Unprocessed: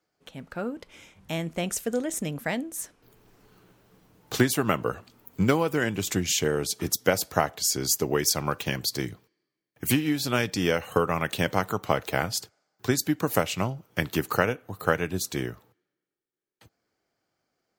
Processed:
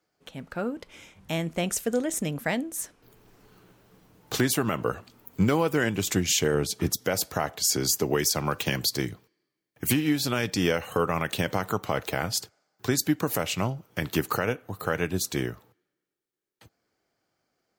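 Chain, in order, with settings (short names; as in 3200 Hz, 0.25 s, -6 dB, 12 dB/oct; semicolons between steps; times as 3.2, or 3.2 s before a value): 6.54–7.02 tone controls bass +4 dB, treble -4 dB; limiter -13.5 dBFS, peak gain reduction 9 dB; 7.69–8.88 three-band squash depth 40%; gain +1.5 dB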